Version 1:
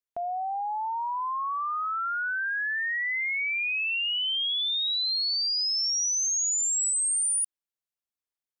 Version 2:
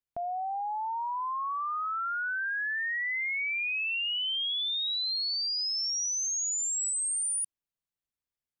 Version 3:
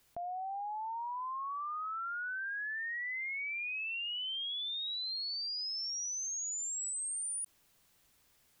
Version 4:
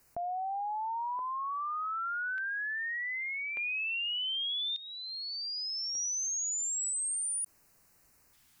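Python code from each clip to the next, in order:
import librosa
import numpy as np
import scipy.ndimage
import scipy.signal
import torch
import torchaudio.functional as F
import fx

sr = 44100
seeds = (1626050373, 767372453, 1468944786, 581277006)

y1 = fx.bass_treble(x, sr, bass_db=10, treble_db=-2)
y1 = y1 * 10.0 ** (-2.5 / 20.0)
y2 = fx.env_flatten(y1, sr, amount_pct=50)
y2 = y2 * 10.0 ** (-7.5 / 20.0)
y3 = fx.filter_lfo_notch(y2, sr, shape='square', hz=0.42, low_hz=510.0, high_hz=3400.0, q=1.2)
y3 = y3 * 10.0 ** (4.5 / 20.0)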